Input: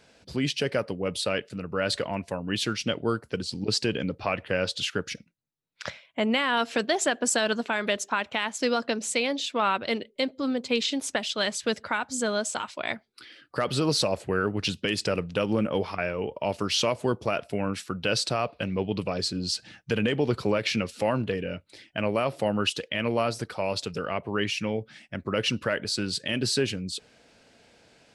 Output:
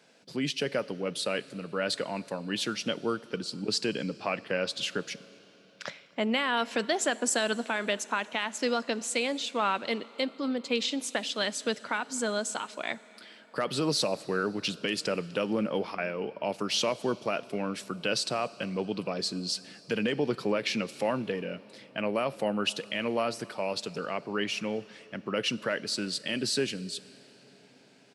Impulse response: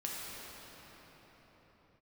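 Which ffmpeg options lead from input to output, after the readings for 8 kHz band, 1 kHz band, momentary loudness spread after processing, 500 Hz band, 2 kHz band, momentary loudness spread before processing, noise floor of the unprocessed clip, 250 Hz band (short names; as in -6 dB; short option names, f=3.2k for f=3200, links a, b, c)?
-2.5 dB, -3.0 dB, 7 LU, -3.0 dB, -3.0 dB, 7 LU, -61 dBFS, -3.0 dB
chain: -filter_complex "[0:a]highpass=f=150:w=0.5412,highpass=f=150:w=1.3066,asplit=2[a][b];[b]adelay=250.7,volume=-27dB,highshelf=f=4k:g=-5.64[c];[a][c]amix=inputs=2:normalize=0,asplit=2[d][e];[1:a]atrim=start_sample=2205,highshelf=f=3.7k:g=10[f];[e][f]afir=irnorm=-1:irlink=0,volume=-22.5dB[g];[d][g]amix=inputs=2:normalize=0,volume=-3.5dB"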